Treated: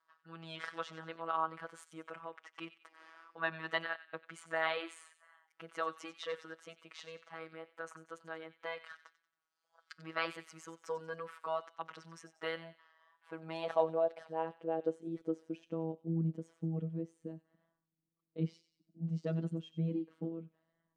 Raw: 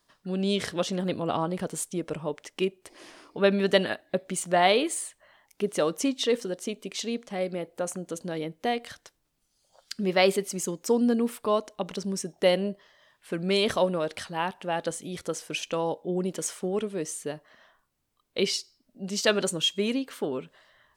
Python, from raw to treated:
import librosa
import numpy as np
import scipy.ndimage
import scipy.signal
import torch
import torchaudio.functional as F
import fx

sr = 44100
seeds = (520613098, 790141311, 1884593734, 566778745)

p1 = x + fx.echo_wet_highpass(x, sr, ms=92, feedback_pct=38, hz=1900.0, wet_db=-12.5, dry=0)
p2 = fx.filter_sweep_bandpass(p1, sr, from_hz=1300.0, to_hz=220.0, start_s=12.83, end_s=15.91, q=2.8)
p3 = fx.robotise(p2, sr, hz=163.0)
p4 = fx.wow_flutter(p3, sr, seeds[0], rate_hz=2.1, depth_cents=24.0)
y = p4 * librosa.db_to_amplitude(2.5)